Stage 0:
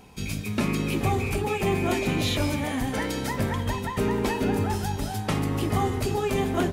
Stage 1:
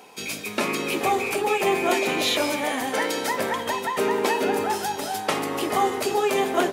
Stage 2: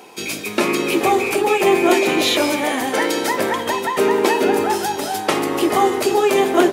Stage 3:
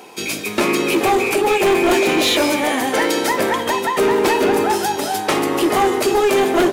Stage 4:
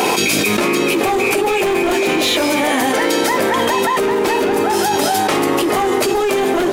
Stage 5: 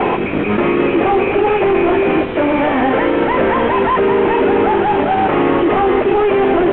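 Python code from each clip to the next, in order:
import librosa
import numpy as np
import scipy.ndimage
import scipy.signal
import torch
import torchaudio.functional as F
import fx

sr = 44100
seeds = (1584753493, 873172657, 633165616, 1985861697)

y1 = scipy.signal.sosfilt(scipy.signal.cheby1(2, 1.0, 470.0, 'highpass', fs=sr, output='sos'), x)
y1 = y1 * 10.0 ** (6.5 / 20.0)
y2 = fx.peak_eq(y1, sr, hz=340.0, db=8.5, octaves=0.29)
y2 = y2 * 10.0 ** (5.0 / 20.0)
y3 = np.clip(y2, -10.0 ** (-13.0 / 20.0), 10.0 ** (-13.0 / 20.0))
y3 = y3 * 10.0 ** (2.0 / 20.0)
y4 = fx.env_flatten(y3, sr, amount_pct=100)
y4 = y4 * 10.0 ** (-3.0 / 20.0)
y5 = fx.cvsd(y4, sr, bps=16000)
y5 = y5 * 10.0 ** (4.5 / 20.0)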